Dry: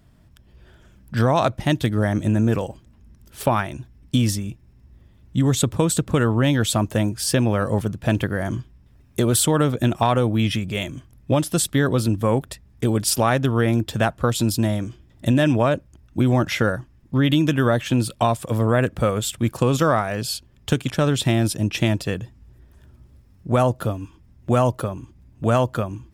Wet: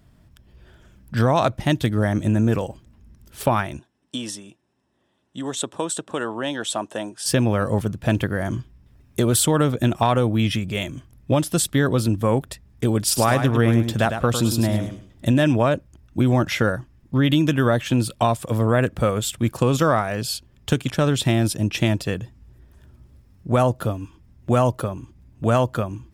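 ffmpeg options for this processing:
-filter_complex "[0:a]asettb=1/sr,asplit=3[s0][s1][s2];[s0]atrim=end=3.794[s3];[s1]atrim=start=3.79:end=7.26,asetpts=PTS-STARTPTS,afade=t=in:d=0.004:c=qsin,afade=t=out:st=3.466:d=0.004:c=qsin,highpass=430,equalizer=f=480:t=q:w=4:g=-4,equalizer=f=1300:t=q:w=4:g=-4,equalizer=f=2200:t=q:w=4:g=-10,equalizer=f=4600:t=q:w=4:g=-8,equalizer=f=6700:t=q:w=4:g=-5,lowpass=f=9200:w=0.5412,lowpass=f=9200:w=1.3066[s4];[s2]atrim=start=7.256[s5];[s3][s4]acrossfade=d=0.004:c1=hsin:c2=qsin[s6];[s6][s5]acrossfade=d=0.004:c1=qsin:c2=hsin,asettb=1/sr,asplit=3[s7][s8][s9];[s7]atrim=end=13.054[s10];[s8]atrim=start=13.05:end=15.33,asetpts=PTS-STARTPTS,afade=t=in:d=0.004:c=qsin,afade=t=out:st=2.276:d=0.004:c=qsin,aecho=1:1:104|208|312:0.398|0.0916|0.0211,atrim=end_sample=100548[s11];[s9]atrim=start=15.326[s12];[s10][s11]acrossfade=d=0.004:c1=hsin:c2=qsin[s13];[s13][s12]acrossfade=d=0.004:c1=qsin:c2=hsin"

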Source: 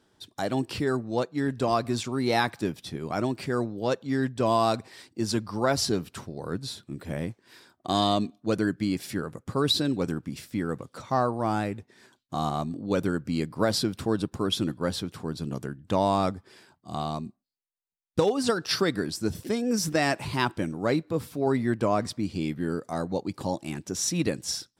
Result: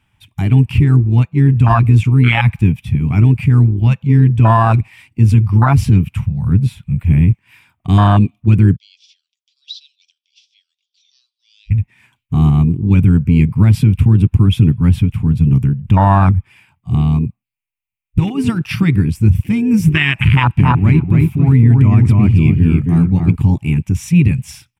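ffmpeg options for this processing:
-filter_complex "[0:a]asettb=1/sr,asplit=3[s0][s1][s2];[s0]atrim=end=8.764[s3];[s1]atrim=start=8.76:end=11.71,asetpts=PTS-STARTPTS,afade=t=in:d=0.004:c=qsin,afade=t=out:st=2.946:d=0.004:c=qsin,asuperpass=centerf=4500:order=8:qfactor=1.7[s4];[s2]atrim=start=11.706[s5];[s3][s4]acrossfade=d=0.004:c1=hsin:c2=qsin[s6];[s6][s5]acrossfade=d=0.004:c1=qsin:c2=hsin,asplit=3[s7][s8][s9];[s7]afade=t=out:st=20.57:d=0.02[s10];[s8]asplit=2[s11][s12];[s12]adelay=275,lowpass=f=3400:p=1,volume=0.708,asplit=2[s13][s14];[s14]adelay=275,lowpass=f=3400:p=1,volume=0.24,asplit=2[s15][s16];[s16]adelay=275,lowpass=f=3400:p=1,volume=0.24[s17];[s11][s13][s15][s17]amix=inputs=4:normalize=0,afade=t=in:st=20.57:d=0.02,afade=t=out:st=23.35:d=0.02[s18];[s9]afade=t=in:st=23.35:d=0.02[s19];[s10][s18][s19]amix=inputs=3:normalize=0,firequalizer=gain_entry='entry(110,0);entry(190,-11);entry(410,-29);entry(870,-10);entry(1600,-13);entry(2400,4);entry(4100,-22);entry(9300,-12);entry(13000,-9)':delay=0.05:min_phase=1,afwtdn=0.02,alimiter=level_in=33.5:limit=0.891:release=50:level=0:latency=1,volume=0.891"

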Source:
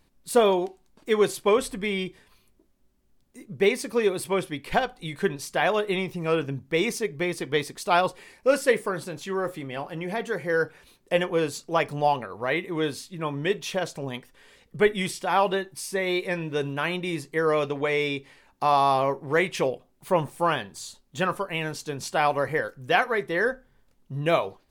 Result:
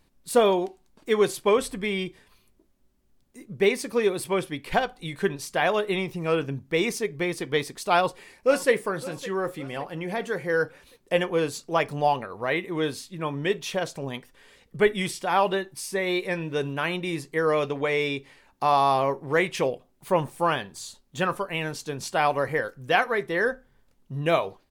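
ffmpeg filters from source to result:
-filter_complex "[0:a]asplit=2[s0][s1];[s1]afade=t=in:st=7.94:d=0.01,afade=t=out:st=8.72:d=0.01,aecho=0:1:560|1120|1680|2240:0.133352|0.0600085|0.0270038|0.0121517[s2];[s0][s2]amix=inputs=2:normalize=0"

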